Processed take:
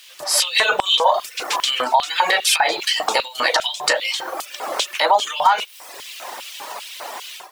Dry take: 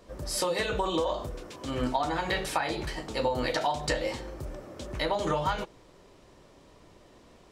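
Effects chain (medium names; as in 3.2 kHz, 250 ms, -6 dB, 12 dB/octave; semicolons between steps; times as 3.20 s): added noise pink -57 dBFS; level rider gain up to 12 dB; reverb removal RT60 0.81 s; compression 4:1, threshold -26 dBFS, peak gain reduction 12.5 dB; LFO high-pass square 2.5 Hz 820–2900 Hz; loudness maximiser +16.5 dB; trim -4 dB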